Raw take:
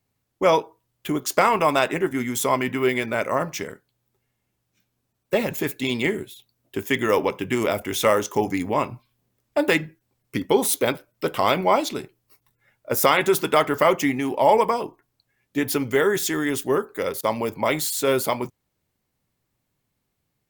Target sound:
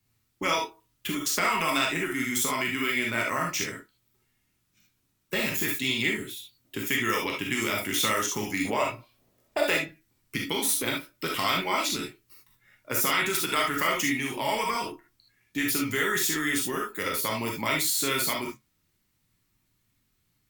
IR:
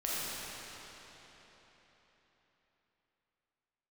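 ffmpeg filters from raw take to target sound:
-filter_complex "[0:a]asetnsamples=nb_out_samples=441:pad=0,asendcmd='8.65 equalizer g 4;9.84 equalizer g -13',equalizer=frequency=600:width_type=o:width=1.2:gain=-12.5,acrossover=split=99|1500[link_01][link_02][link_03];[link_01]acompressor=threshold=-57dB:ratio=4[link_04];[link_02]acompressor=threshold=-34dB:ratio=4[link_05];[link_03]acompressor=threshold=-29dB:ratio=4[link_06];[link_04][link_05][link_06]amix=inputs=3:normalize=0,flanger=delay=9:depth=3.1:regen=-67:speed=0.14:shape=triangular[link_07];[1:a]atrim=start_sample=2205,atrim=end_sample=3528[link_08];[link_07][link_08]afir=irnorm=-1:irlink=0,volume=8.5dB"

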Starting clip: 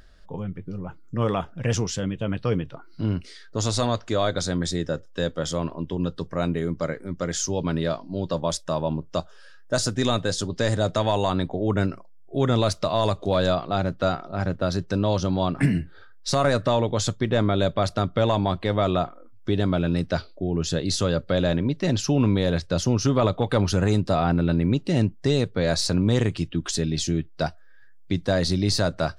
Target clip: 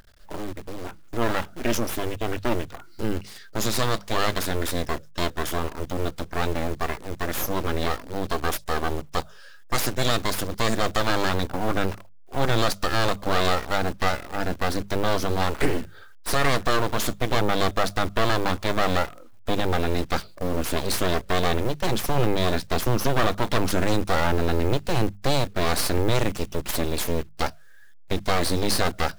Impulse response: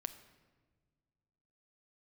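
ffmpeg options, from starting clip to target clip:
-af "acrusher=bits=8:dc=4:mix=0:aa=0.000001,aeval=exprs='abs(val(0))':channel_layout=same,lowshelf=frequency=440:gain=-2.5,bandreject=frequency=50:width_type=h:width=6,bandreject=frequency=100:width_type=h:width=6,bandreject=frequency=150:width_type=h:width=6,bandreject=frequency=200:width_type=h:width=6,volume=3.5dB"

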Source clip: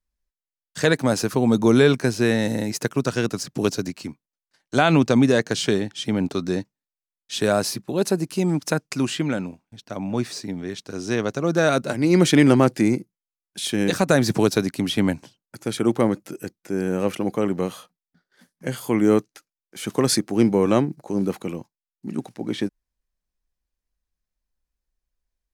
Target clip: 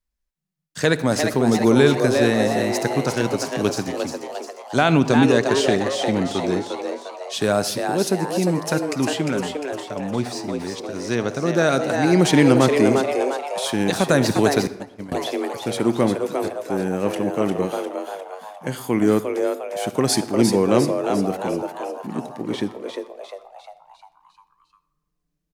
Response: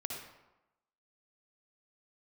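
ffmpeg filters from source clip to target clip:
-filter_complex "[0:a]asplit=7[link_01][link_02][link_03][link_04][link_05][link_06][link_07];[link_02]adelay=352,afreqshift=140,volume=-5.5dB[link_08];[link_03]adelay=704,afreqshift=280,volume=-11.5dB[link_09];[link_04]adelay=1056,afreqshift=420,volume=-17.5dB[link_10];[link_05]adelay=1408,afreqshift=560,volume=-23.6dB[link_11];[link_06]adelay=1760,afreqshift=700,volume=-29.6dB[link_12];[link_07]adelay=2112,afreqshift=840,volume=-35.6dB[link_13];[link_01][link_08][link_09][link_10][link_11][link_12][link_13]amix=inputs=7:normalize=0,asettb=1/sr,asplit=3[link_14][link_15][link_16];[link_14]atrim=end=14.674[link_17];[link_15]atrim=start=14.67:end=15.12,asetpts=PTS-STARTPTS,afade=type=in:duration=0.004:curve=qsin,afade=type=out:start_time=0.446:duration=0.004:curve=qsin,agate=range=-35dB:threshold=-15dB:ratio=16:detection=peak[link_18];[link_16]atrim=start=15.116[link_19];[link_17][link_18]acrossfade=duration=0.004:curve1=hsin:curve2=qsin[link_20];[link_20][link_19]acrossfade=duration=0.004:curve1=qsin:curve2=hsin,asplit=2[link_21][link_22];[1:a]atrim=start_sample=2205[link_23];[link_22][link_23]afir=irnorm=-1:irlink=0,volume=-11dB[link_24];[link_21][link_24]amix=inputs=2:normalize=0,volume=-1.5dB"

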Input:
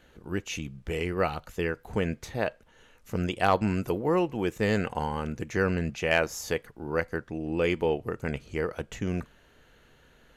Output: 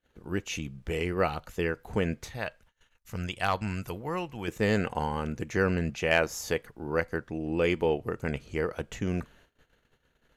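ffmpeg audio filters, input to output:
ffmpeg -i in.wav -filter_complex "[0:a]asettb=1/sr,asplit=3[link_01][link_02][link_03];[link_01]atrim=end=2.284[link_04];[link_02]atrim=start=2.28:end=4.48,asetpts=PTS-STARTPTS,afade=type=in:duration=0.004:curve=qsin,afade=type=out:start_time=2.196:duration=0.004:curve=qsin,equalizer=frequency=360:width=0.58:gain=-11[link_05];[link_03]atrim=start=4.476[link_06];[link_04][link_05]acrossfade=duration=0.004:curve1=hsin:curve2=qsin[link_07];[link_07][link_06]acrossfade=duration=0.004:curve1=qsin:curve2=hsin,agate=range=-25dB:threshold=-56dB:ratio=16:detection=peak" out.wav

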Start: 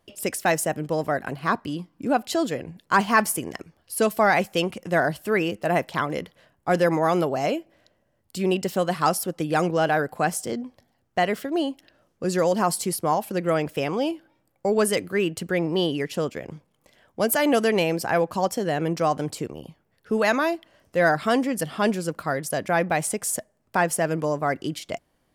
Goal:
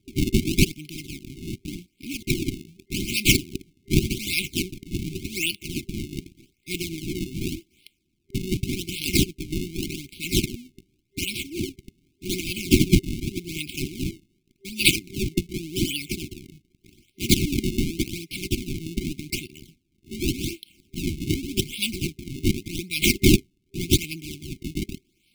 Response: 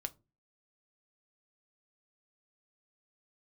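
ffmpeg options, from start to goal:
-af "aexciter=amount=7.7:drive=8.7:freq=2300,acrusher=samples=31:mix=1:aa=0.000001:lfo=1:lforange=49.6:lforate=0.86,afftfilt=real='re*(1-between(b*sr/4096,390,2100))':imag='im*(1-between(b*sr/4096,390,2100))':win_size=4096:overlap=0.75,volume=-9.5dB"

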